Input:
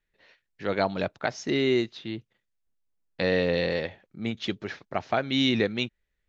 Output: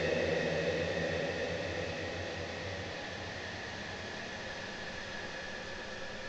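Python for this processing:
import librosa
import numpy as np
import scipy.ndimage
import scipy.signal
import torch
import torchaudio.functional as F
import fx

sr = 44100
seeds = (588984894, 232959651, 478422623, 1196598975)

y = fx.delta_mod(x, sr, bps=32000, step_db=-35.5)
y = fx.paulstretch(y, sr, seeds[0], factor=32.0, window_s=0.25, from_s=3.85)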